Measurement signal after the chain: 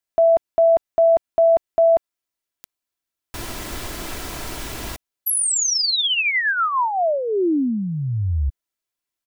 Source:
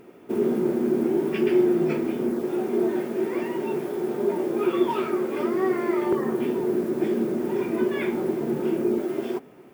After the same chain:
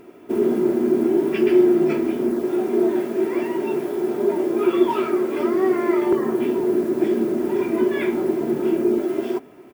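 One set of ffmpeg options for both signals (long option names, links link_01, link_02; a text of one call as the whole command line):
ffmpeg -i in.wav -af "aecho=1:1:3:0.37,volume=2.5dB" out.wav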